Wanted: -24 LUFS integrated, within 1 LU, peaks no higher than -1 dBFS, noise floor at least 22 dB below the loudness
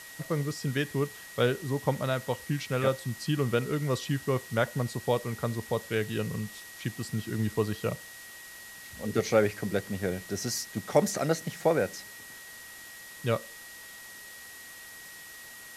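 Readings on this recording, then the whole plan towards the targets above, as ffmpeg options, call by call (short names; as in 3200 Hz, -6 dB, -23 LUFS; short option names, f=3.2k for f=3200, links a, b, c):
steady tone 1900 Hz; tone level -47 dBFS; noise floor -47 dBFS; noise floor target -53 dBFS; loudness -30.5 LUFS; peak -9.5 dBFS; loudness target -24.0 LUFS
-> -af "bandreject=f=1.9k:w=30"
-af "afftdn=nr=6:nf=-47"
-af "volume=6.5dB"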